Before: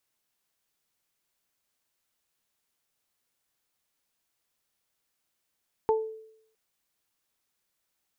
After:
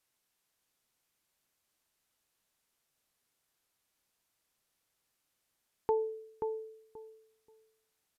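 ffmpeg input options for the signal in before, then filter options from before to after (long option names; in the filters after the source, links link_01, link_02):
-f lavfi -i "aevalsrc='0.106*pow(10,-3*t/0.73)*sin(2*PI*440*t)+0.0794*pow(10,-3*t/0.24)*sin(2*PI*880*t)':duration=0.66:sample_rate=44100"
-filter_complex "[0:a]alimiter=limit=-20.5dB:level=0:latency=1:release=126,asplit=2[link_01][link_02];[link_02]adelay=531,lowpass=frequency=920:poles=1,volume=-4.5dB,asplit=2[link_03][link_04];[link_04]adelay=531,lowpass=frequency=920:poles=1,volume=0.22,asplit=2[link_05][link_06];[link_06]adelay=531,lowpass=frequency=920:poles=1,volume=0.22[link_07];[link_03][link_05][link_07]amix=inputs=3:normalize=0[link_08];[link_01][link_08]amix=inputs=2:normalize=0,aresample=32000,aresample=44100"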